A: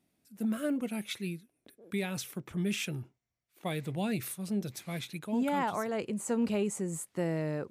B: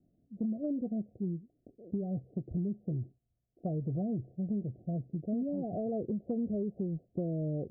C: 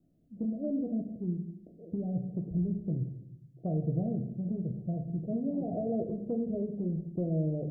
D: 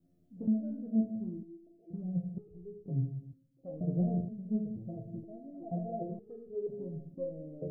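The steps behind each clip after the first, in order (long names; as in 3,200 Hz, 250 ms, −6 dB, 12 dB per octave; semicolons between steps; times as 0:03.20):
Chebyshev low-pass filter 740 Hz, order 10; spectral tilt −3 dB per octave; downward compressor, threshold −31 dBFS, peak gain reduction 10 dB
rectangular room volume 190 cubic metres, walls mixed, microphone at 0.59 metres
step-sequenced resonator 2.1 Hz 88–420 Hz; level +8.5 dB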